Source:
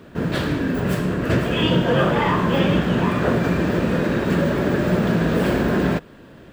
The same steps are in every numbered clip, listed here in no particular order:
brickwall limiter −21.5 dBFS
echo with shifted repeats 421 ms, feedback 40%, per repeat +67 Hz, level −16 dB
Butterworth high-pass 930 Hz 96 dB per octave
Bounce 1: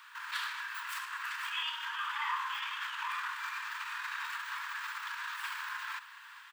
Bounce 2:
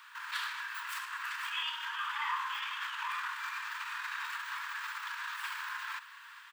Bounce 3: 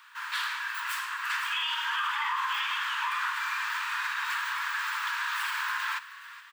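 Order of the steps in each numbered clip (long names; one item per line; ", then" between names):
brickwall limiter, then echo with shifted repeats, then Butterworth high-pass
brickwall limiter, then Butterworth high-pass, then echo with shifted repeats
Butterworth high-pass, then brickwall limiter, then echo with shifted repeats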